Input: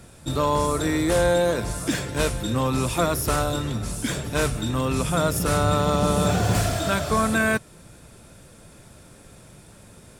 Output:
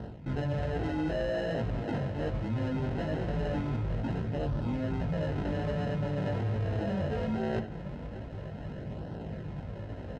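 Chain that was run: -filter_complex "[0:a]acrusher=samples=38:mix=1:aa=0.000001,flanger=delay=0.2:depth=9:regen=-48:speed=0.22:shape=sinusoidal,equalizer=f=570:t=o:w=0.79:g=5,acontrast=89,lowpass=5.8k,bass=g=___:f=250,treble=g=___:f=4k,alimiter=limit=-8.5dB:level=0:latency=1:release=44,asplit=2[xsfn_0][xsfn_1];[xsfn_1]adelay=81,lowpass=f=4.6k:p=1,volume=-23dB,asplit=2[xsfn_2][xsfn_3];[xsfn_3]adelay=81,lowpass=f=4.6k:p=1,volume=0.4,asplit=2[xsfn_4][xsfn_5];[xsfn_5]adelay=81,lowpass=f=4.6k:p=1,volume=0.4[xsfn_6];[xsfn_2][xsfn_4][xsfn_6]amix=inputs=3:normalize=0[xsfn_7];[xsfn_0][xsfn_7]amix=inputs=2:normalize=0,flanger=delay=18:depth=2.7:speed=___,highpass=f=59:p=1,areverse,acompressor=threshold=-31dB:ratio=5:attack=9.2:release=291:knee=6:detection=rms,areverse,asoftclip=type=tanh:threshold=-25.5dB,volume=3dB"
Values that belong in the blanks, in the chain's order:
8, -11, 1.2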